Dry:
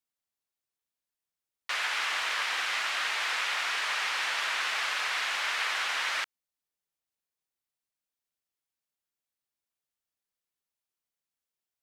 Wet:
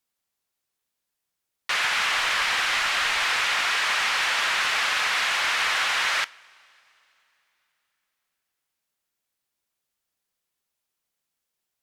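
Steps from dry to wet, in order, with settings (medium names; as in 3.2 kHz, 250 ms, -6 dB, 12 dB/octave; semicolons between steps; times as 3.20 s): sine folder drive 4 dB, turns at -17.5 dBFS; 2.15–3.24 s: bass shelf 71 Hz +11 dB; two-slope reverb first 0.31 s, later 3.4 s, from -18 dB, DRR 17 dB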